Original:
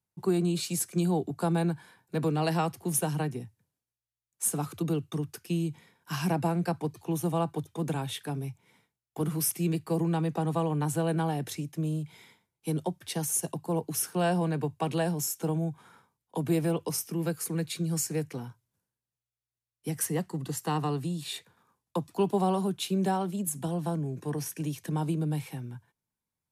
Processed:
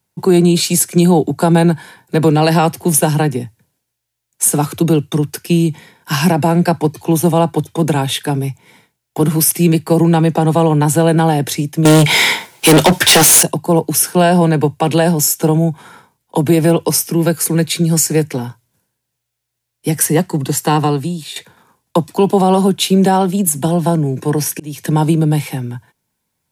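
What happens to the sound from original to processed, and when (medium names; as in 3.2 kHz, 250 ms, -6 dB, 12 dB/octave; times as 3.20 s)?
11.85–13.43 s: overdrive pedal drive 35 dB, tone 7.5 kHz, clips at -17.5 dBFS
20.77–21.36 s: fade out, to -12.5 dB
23.87–24.79 s: slow attack 304 ms
whole clip: bass shelf 110 Hz -5.5 dB; band-stop 1.2 kHz, Q 8.3; loudness maximiser +19 dB; trim -1 dB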